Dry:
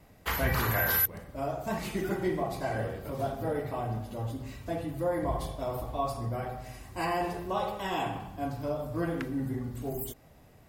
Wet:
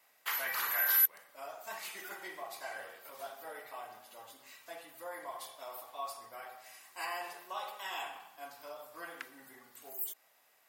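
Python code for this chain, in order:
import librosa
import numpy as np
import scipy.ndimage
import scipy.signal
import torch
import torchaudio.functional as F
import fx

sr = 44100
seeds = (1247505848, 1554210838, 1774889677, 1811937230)

y = scipy.signal.sosfilt(scipy.signal.butter(2, 1100.0, 'highpass', fs=sr, output='sos'), x)
y = fx.high_shelf(y, sr, hz=12000.0, db=7.5)
y = y * 10.0 ** (-3.0 / 20.0)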